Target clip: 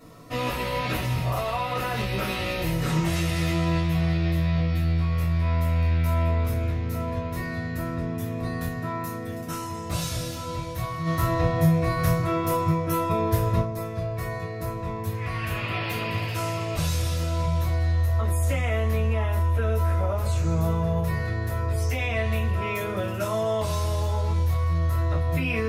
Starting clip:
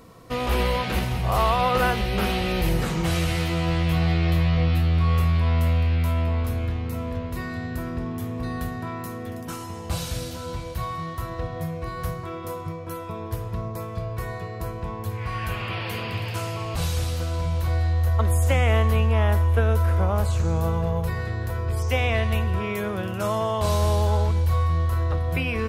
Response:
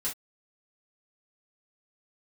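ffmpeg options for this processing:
-filter_complex "[0:a]alimiter=limit=0.133:level=0:latency=1:release=94,asplit=3[s0][s1][s2];[s0]afade=t=out:st=11.05:d=0.02[s3];[s1]acontrast=86,afade=t=in:st=11.05:d=0.02,afade=t=out:st=13.6:d=0.02[s4];[s2]afade=t=in:st=13.6:d=0.02[s5];[s3][s4][s5]amix=inputs=3:normalize=0[s6];[1:a]atrim=start_sample=2205,asetrate=57330,aresample=44100[s7];[s6][s7]afir=irnorm=-1:irlink=0"

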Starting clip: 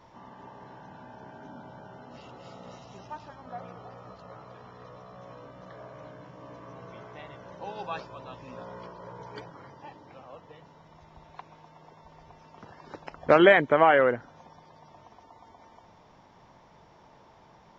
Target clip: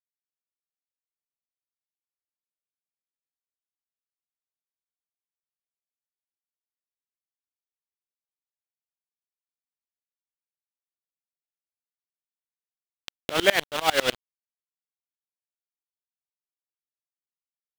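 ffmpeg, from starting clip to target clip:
-af "acrusher=bits=3:mix=0:aa=0.000001,equalizer=f=3200:w=1.5:g=12.5,aeval=exprs='val(0)*pow(10,-27*if(lt(mod(-10*n/s,1),2*abs(-10)/1000),1-mod(-10*n/s,1)/(2*abs(-10)/1000),(mod(-10*n/s,1)-2*abs(-10)/1000)/(1-2*abs(-10)/1000))/20)':c=same,volume=1.19"

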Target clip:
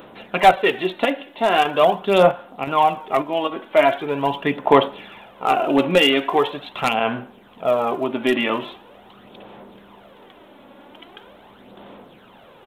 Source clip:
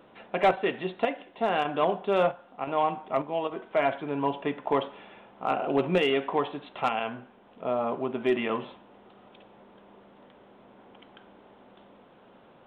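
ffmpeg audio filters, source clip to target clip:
-af "aphaser=in_gain=1:out_gain=1:delay=3.6:decay=0.47:speed=0.42:type=sinusoidal,aresample=32000,aresample=44100,aemphasis=mode=production:type=75fm,volume=2.37"

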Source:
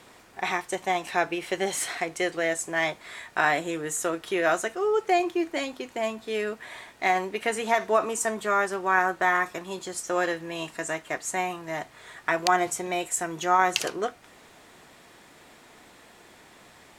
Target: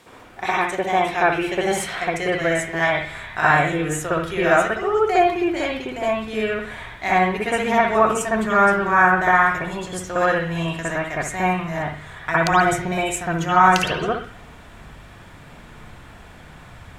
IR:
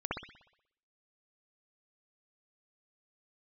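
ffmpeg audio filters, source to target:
-filter_complex "[1:a]atrim=start_sample=2205[s0];[0:a][s0]afir=irnorm=-1:irlink=0,asubboost=boost=7:cutoff=120,volume=1.41"

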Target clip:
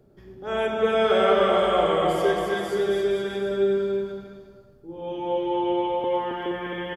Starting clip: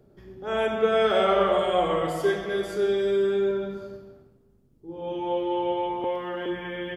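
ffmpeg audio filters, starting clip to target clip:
-af "aecho=1:1:270|472.5|624.4|738.3|823.7:0.631|0.398|0.251|0.158|0.1"

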